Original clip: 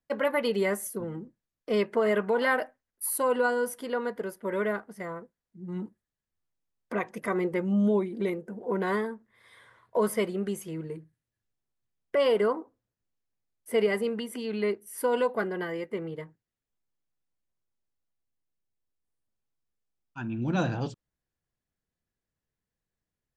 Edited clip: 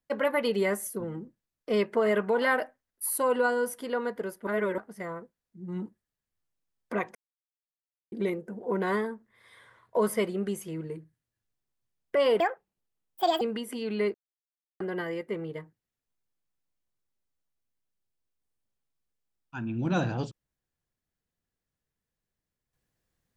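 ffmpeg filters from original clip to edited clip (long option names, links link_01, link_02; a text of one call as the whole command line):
ffmpeg -i in.wav -filter_complex "[0:a]asplit=9[link_01][link_02][link_03][link_04][link_05][link_06][link_07][link_08][link_09];[link_01]atrim=end=4.472[link_10];[link_02]atrim=start=4.468:end=4.782,asetpts=PTS-STARTPTS,areverse[link_11];[link_03]atrim=start=4.778:end=7.15,asetpts=PTS-STARTPTS,afade=type=out:start_time=2.368:duration=0.004:curve=hsin[link_12];[link_04]atrim=start=7.15:end=8.12,asetpts=PTS-STARTPTS,volume=0[link_13];[link_05]atrim=start=8.12:end=12.404,asetpts=PTS-STARTPTS,afade=type=in:duration=0.004:curve=hsin[link_14];[link_06]atrim=start=12.4:end=14.04,asetpts=PTS-STARTPTS,asetrate=71442,aresample=44100,atrim=end_sample=44644,asetpts=PTS-STARTPTS[link_15];[link_07]atrim=start=14.036:end=14.77,asetpts=PTS-STARTPTS,afade=type=out:start_time=0.73:duration=0.004:curve=hsin[link_16];[link_08]atrim=start=14.77:end=15.43,asetpts=PTS-STARTPTS,volume=0[link_17];[link_09]atrim=start=15.43,asetpts=PTS-STARTPTS,afade=type=in:duration=0.004:curve=hsin[link_18];[link_10][link_11]acrossfade=duration=0.004:curve1=hsin:curve2=hsin[link_19];[link_12][link_13][link_14]concat=n=3:v=0:a=1[link_20];[link_19][link_20]acrossfade=duration=0.004:curve1=hsin:curve2=hsin[link_21];[link_21][link_15]acrossfade=duration=0.004:curve1=hsin:curve2=hsin[link_22];[link_16][link_17][link_18]concat=n=3:v=0:a=1[link_23];[link_22][link_23]acrossfade=duration=0.004:curve1=hsin:curve2=hsin" out.wav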